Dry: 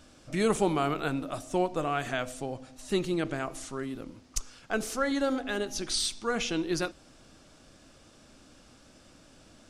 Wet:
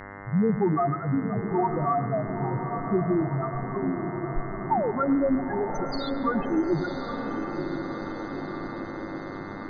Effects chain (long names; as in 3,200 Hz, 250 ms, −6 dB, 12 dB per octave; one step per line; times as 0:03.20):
sound drawn into the spectrogram fall, 0:04.71–0:04.92, 380–960 Hz −30 dBFS
octave-band graphic EQ 125/500/1,000/2,000/8,000 Hz +6/−4/+9/−8/−5 dB
spectral peaks only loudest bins 2
feedback delay with all-pass diffusion 960 ms, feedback 62%, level −7.5 dB
in parallel at −1 dB: downward compressor, threshold −44 dBFS, peak gain reduction 15.5 dB
on the sum: hum with harmonics 100 Hz, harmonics 21, −48 dBFS −1 dB per octave
on a send at −13.5 dB: convolution reverb RT60 1.0 s, pre-delay 102 ms
on the sum: level +6.5 dB